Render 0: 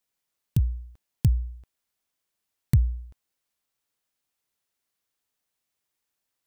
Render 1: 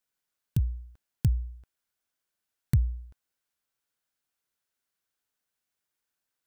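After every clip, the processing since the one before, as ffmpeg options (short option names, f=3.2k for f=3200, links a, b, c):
-af "equalizer=f=1.5k:w=6.3:g=7,volume=-3.5dB"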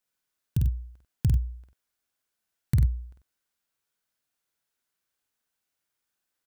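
-af "aecho=1:1:49.56|93.29:0.708|0.316"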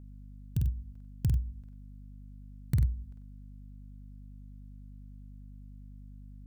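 -af "aeval=exprs='val(0)+0.00794*(sin(2*PI*50*n/s)+sin(2*PI*2*50*n/s)/2+sin(2*PI*3*50*n/s)/3+sin(2*PI*4*50*n/s)/4+sin(2*PI*5*50*n/s)/5)':c=same,volume=-4.5dB"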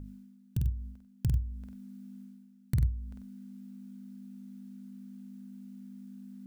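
-af "bandreject=f=50:t=h:w=6,bandreject=f=100:t=h:w=6,bandreject=f=150:t=h:w=6,areverse,acompressor=mode=upward:threshold=-35dB:ratio=2.5,areverse"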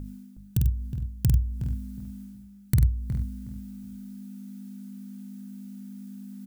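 -filter_complex "[0:a]highshelf=f=5.7k:g=8,asplit=2[a][b];[b]adelay=366,lowpass=f=1.3k:p=1,volume=-8.5dB,asplit=2[c][d];[d]adelay=366,lowpass=f=1.3k:p=1,volume=0.22,asplit=2[e][f];[f]adelay=366,lowpass=f=1.3k:p=1,volume=0.22[g];[a][c][e][g]amix=inputs=4:normalize=0,volume=6.5dB"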